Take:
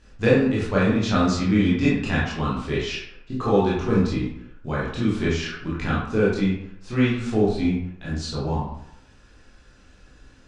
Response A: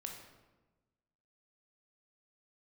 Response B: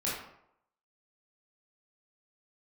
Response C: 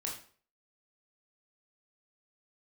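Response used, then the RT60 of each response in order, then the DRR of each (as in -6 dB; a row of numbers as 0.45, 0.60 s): B; 1.2, 0.75, 0.45 s; 1.5, -7.5, -2.5 dB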